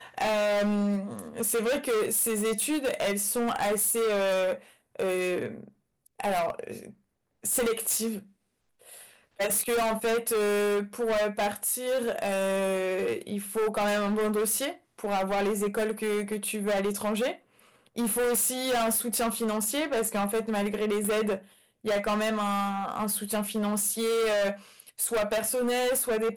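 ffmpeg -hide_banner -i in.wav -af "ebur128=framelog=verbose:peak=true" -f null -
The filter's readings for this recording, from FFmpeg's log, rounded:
Integrated loudness:
  I:         -27.7 LUFS
  Threshold: -38.2 LUFS
Loudness range:
  LRA:         3.9 LU
  Threshold: -48.4 LUFS
  LRA low:   -30.9 LUFS
  LRA high:  -27.0 LUFS
True peak:
  Peak:      -19.7 dBFS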